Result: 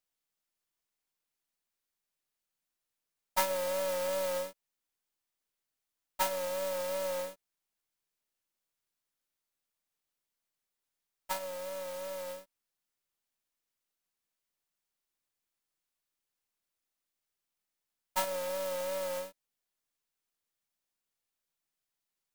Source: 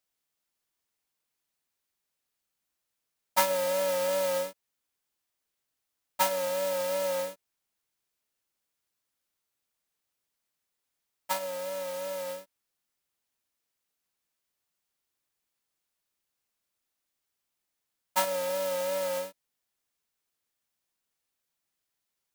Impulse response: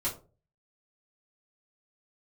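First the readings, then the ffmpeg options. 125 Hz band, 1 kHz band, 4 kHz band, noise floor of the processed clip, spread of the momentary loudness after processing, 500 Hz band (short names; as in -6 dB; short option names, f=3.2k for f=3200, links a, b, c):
n/a, -5.0 dB, -4.5 dB, under -85 dBFS, 10 LU, -5.0 dB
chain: -af "aeval=exprs='if(lt(val(0),0),0.708*val(0),val(0))':c=same,volume=-3.5dB"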